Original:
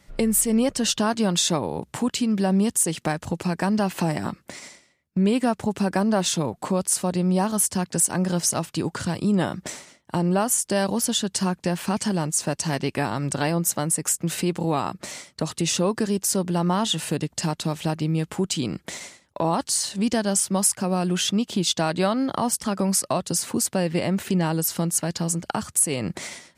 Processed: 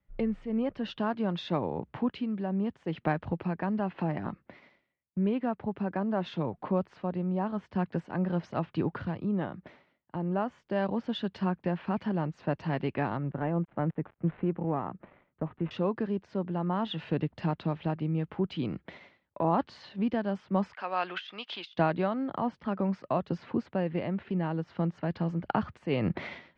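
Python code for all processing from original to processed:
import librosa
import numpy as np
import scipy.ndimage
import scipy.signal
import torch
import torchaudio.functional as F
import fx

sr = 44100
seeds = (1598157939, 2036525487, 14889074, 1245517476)

y = fx.chain(x, sr, fx.dead_time(dead_ms=0.095),
    fx.air_absorb(metres=500.0), at=(13.17, 15.71))
y = fx.chain(y, sr, fx.highpass(hz=1100.0, slope=12),
    fx.over_compress(threshold_db=-30.0, ratio=-0.5), at=(20.73, 21.75))
y = scipy.signal.sosfilt(scipy.signal.bessel(6, 2000.0, 'lowpass', norm='mag', fs=sr, output='sos'), y)
y = fx.rider(y, sr, range_db=10, speed_s=0.5)
y = fx.band_widen(y, sr, depth_pct=40)
y = y * librosa.db_to_amplitude(-6.0)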